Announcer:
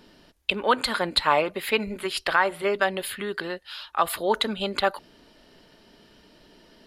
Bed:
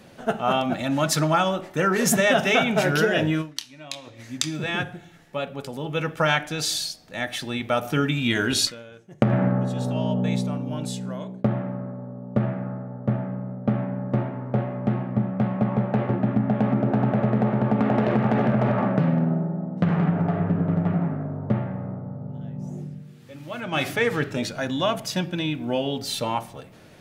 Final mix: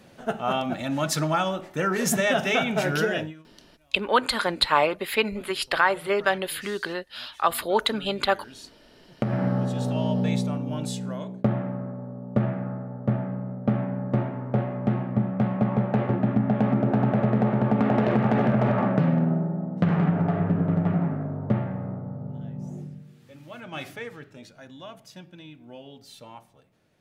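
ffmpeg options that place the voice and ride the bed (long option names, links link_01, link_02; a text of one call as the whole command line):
ffmpeg -i stem1.wav -i stem2.wav -filter_complex "[0:a]adelay=3450,volume=0.5dB[link_01];[1:a]volume=19dB,afade=type=out:start_time=3.11:duration=0.23:silence=0.105925,afade=type=in:start_time=8.88:duration=0.81:silence=0.0749894,afade=type=out:start_time=22.27:duration=1.93:silence=0.125893[link_02];[link_01][link_02]amix=inputs=2:normalize=0" out.wav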